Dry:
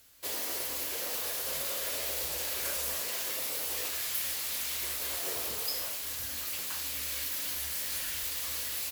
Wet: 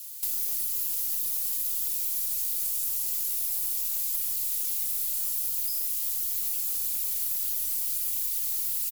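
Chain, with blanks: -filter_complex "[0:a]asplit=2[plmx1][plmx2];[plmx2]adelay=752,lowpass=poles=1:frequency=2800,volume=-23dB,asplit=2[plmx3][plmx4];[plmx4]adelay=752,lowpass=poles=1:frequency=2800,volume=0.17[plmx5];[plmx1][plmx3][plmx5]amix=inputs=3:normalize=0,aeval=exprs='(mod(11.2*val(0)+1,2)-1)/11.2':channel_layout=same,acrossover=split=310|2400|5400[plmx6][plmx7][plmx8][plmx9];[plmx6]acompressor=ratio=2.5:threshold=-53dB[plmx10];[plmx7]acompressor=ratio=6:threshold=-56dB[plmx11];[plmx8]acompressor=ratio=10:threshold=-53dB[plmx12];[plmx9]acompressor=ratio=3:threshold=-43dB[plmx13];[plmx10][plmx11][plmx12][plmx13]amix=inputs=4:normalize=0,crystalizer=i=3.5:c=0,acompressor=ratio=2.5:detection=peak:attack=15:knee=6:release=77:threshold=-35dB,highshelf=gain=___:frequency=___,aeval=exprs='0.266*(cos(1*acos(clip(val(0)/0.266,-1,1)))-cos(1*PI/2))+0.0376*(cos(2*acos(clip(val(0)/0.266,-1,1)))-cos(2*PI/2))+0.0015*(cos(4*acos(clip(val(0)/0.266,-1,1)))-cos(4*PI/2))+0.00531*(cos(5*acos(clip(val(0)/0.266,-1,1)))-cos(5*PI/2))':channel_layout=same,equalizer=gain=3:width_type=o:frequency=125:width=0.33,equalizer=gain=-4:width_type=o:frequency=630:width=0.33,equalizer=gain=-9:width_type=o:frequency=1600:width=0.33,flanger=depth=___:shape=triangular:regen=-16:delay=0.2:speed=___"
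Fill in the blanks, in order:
7.5, 3600, 3.8, 1.6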